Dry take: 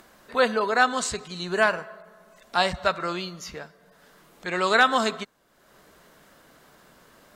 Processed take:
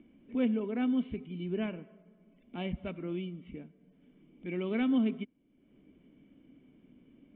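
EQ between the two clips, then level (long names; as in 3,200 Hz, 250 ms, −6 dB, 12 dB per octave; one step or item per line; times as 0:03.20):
formant resonators in series i
high-frequency loss of the air 460 metres
+8.0 dB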